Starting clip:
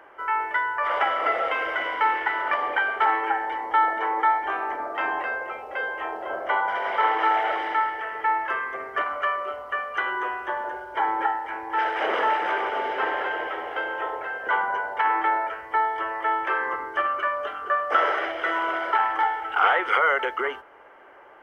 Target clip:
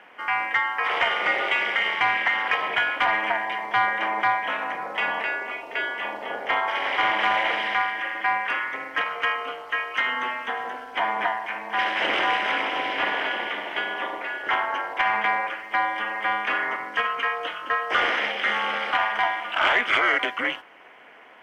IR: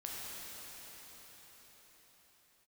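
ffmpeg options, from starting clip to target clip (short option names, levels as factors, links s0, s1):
-filter_complex "[0:a]aexciter=amount=4.7:drive=7.2:freq=2000,asplit=2[s0][s1];[s1]highpass=f=720:p=1,volume=2.82,asoftclip=type=tanh:threshold=0.708[s2];[s0][s2]amix=inputs=2:normalize=0,lowpass=f=1400:p=1,volume=0.501,aeval=exprs='val(0)*sin(2*PI*120*n/s)':c=same"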